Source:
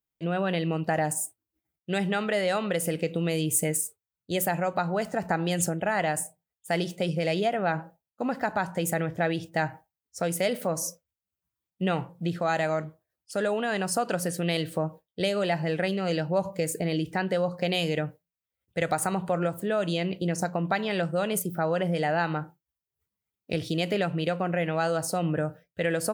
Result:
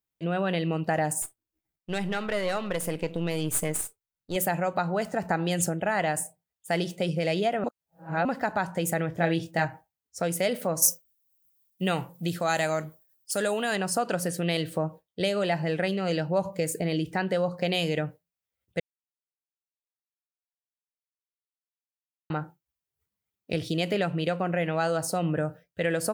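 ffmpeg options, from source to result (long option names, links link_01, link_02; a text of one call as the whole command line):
ffmpeg -i in.wav -filter_complex "[0:a]asettb=1/sr,asplit=3[link_01][link_02][link_03];[link_01]atrim=end=1.224[link_04];[link_02]atrim=start=1.22:end=4.36,asetpts=PTS-STARTPTS,afade=type=in:duration=0.004:curve=qsin,afade=type=out:start_time=3.136:duration=0.004:curve=qsin,aeval=exprs='if(lt(val(0),0),0.447*val(0),val(0))':channel_layout=same[link_05];[link_03]atrim=start=4.356[link_06];[link_04][link_05]acrossfade=duration=0.004:curve1=hsin:curve2=qsin[link_07];[link_07][link_06]acrossfade=duration=0.004:curve1=qsin:curve2=hsin,asettb=1/sr,asplit=3[link_08][link_09][link_10];[link_08]atrim=end=9.144[link_11];[link_09]atrim=start=9.14:end=9.65,asetpts=PTS-STARTPTS,afade=type=in:duration=0.004:curve=qsin,afade=type=out:start_time=0.506:duration=0.004:curve=qsin,asplit=2[link_12][link_13];[link_13]adelay=24,volume=-5dB[link_14];[link_12][link_14]amix=inputs=2:normalize=0,atrim=end_sample=22491[link_15];[link_10]atrim=start=9.646[link_16];[link_11][link_15]acrossfade=duration=0.004:curve1=hsin:curve2=qsin[link_17];[link_17][link_16]acrossfade=duration=0.004:curve1=qsin:curve2=hsin,asettb=1/sr,asplit=3[link_18][link_19][link_20];[link_18]atrim=end=10.824[link_21];[link_19]atrim=start=10.82:end=13.76,asetpts=PTS-STARTPTS,afade=type=in:duration=0.004:curve=qsin,afade=type=out:start_time=2.936:duration=0.004:curve=qsin,aemphasis=mode=production:type=75fm[link_22];[link_20]atrim=start=13.756[link_23];[link_21][link_22]acrossfade=duration=0.004:curve1=hsin:curve2=qsin[link_24];[link_24][link_23]acrossfade=duration=0.004:curve1=qsin:curve2=hsin,asplit=5[link_25][link_26][link_27][link_28][link_29];[link_25]atrim=end=7.642[link_30];[link_26]atrim=start=7.638:end=8.252,asetpts=PTS-STARTPTS,areverse[link_31];[link_27]atrim=start=8.248:end=18.8,asetpts=PTS-STARTPTS,afade=type=out:start_time=10.548:duration=0.004:curve=hsin[link_32];[link_28]atrim=start=18.8:end=22.3,asetpts=PTS-STARTPTS,volume=0[link_33];[link_29]atrim=start=22.3,asetpts=PTS-STARTPTS,afade=type=in:duration=0.004:curve=hsin[link_34];[link_30][link_31]acrossfade=duration=0.004:curve1=hsin:curve2=hsin[link_35];[link_32][link_33][link_34]concat=n=3:v=0:a=1[link_36];[link_35][link_36]acrossfade=duration=0.004:curve1=hsin:curve2=hsin" out.wav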